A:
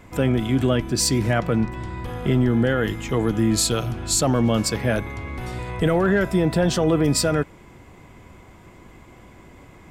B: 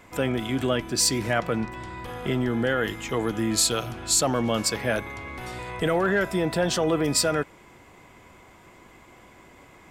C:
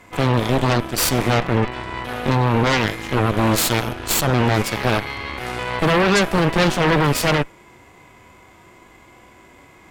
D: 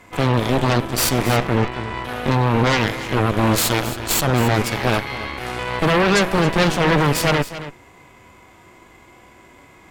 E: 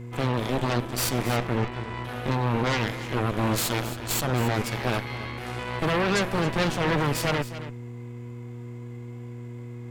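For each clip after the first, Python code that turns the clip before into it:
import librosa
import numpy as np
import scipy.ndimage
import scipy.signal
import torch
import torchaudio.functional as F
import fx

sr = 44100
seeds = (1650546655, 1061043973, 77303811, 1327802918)

y1 = fx.low_shelf(x, sr, hz=290.0, db=-11.0)
y2 = fx.hpss(y1, sr, part='percussive', gain_db=-15)
y2 = fx.cheby_harmonics(y2, sr, harmonics=(3, 5, 8), levels_db=(-13, -19, -10), full_scale_db=-13.5)
y2 = F.gain(torch.from_numpy(y2), 8.0).numpy()
y3 = y2 + 10.0 ** (-13.5 / 20.0) * np.pad(y2, (int(273 * sr / 1000.0), 0))[:len(y2)]
y4 = fx.dmg_buzz(y3, sr, base_hz=120.0, harmonics=4, level_db=-30.0, tilt_db=-7, odd_only=False)
y4 = F.gain(torch.from_numpy(y4), -8.0).numpy()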